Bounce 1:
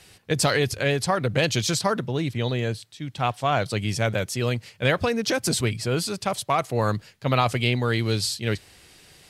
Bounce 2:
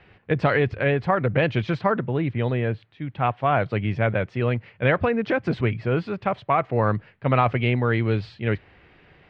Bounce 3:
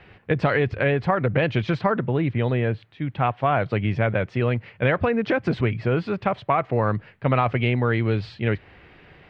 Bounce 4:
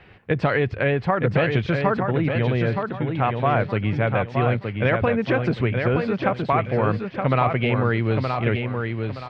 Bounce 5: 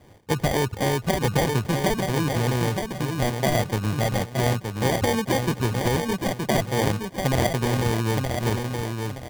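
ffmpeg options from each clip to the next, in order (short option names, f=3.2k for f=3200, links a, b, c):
-af "lowpass=f=2.4k:w=0.5412,lowpass=f=2.4k:w=1.3066,volume=2dB"
-af "acompressor=threshold=-24dB:ratio=2,volume=4dB"
-af "aecho=1:1:921|1842|2763|3684:0.562|0.174|0.054|0.0168"
-af "acrusher=samples=33:mix=1:aa=0.000001,volume=-2dB"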